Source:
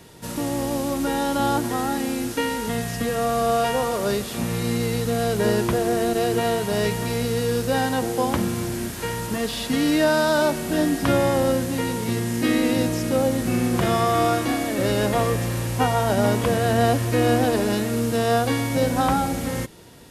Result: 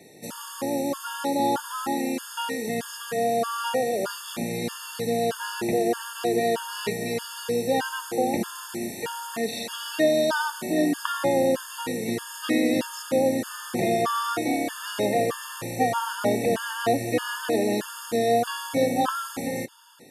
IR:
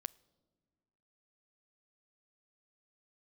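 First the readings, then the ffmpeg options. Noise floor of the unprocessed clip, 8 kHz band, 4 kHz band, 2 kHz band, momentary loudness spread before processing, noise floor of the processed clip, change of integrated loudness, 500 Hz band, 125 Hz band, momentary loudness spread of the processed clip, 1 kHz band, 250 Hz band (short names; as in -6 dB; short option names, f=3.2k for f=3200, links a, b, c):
-31 dBFS, -3.0 dB, -3.0 dB, -3.5 dB, 6 LU, -40 dBFS, -4.0 dB, -3.0 dB, -13.0 dB, 8 LU, -3.0 dB, -5.0 dB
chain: -af "highpass=220,afftfilt=real='re*gt(sin(2*PI*1.6*pts/sr)*(1-2*mod(floor(b*sr/1024/900),2)),0)':imag='im*gt(sin(2*PI*1.6*pts/sr)*(1-2*mod(floor(b*sr/1024/900),2)),0)':win_size=1024:overlap=0.75"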